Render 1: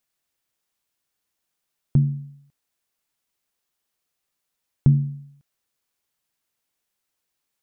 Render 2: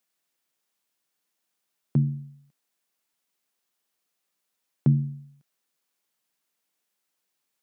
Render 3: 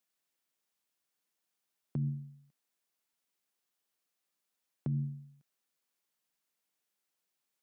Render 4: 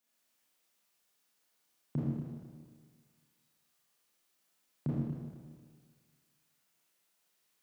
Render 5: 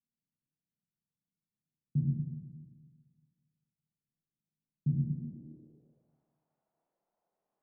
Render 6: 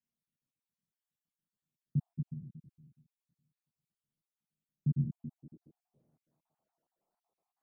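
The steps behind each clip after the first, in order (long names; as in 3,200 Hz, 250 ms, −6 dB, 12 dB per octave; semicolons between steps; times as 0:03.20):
high-pass filter 150 Hz 24 dB per octave
brickwall limiter −21.5 dBFS, peak gain reduction 11.5 dB; level −5.5 dB
four-comb reverb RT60 1.7 s, combs from 26 ms, DRR −8 dB
low-pass filter sweep 160 Hz → 740 Hz, 0:05.05–0:06.17; level −1.5 dB
time-frequency cells dropped at random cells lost 51%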